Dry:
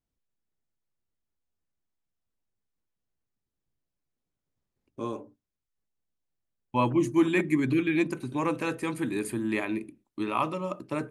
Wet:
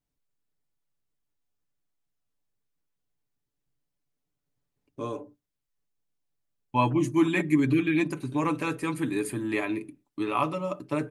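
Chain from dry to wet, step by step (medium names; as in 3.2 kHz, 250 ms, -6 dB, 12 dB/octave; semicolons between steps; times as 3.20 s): comb 6.9 ms, depth 52%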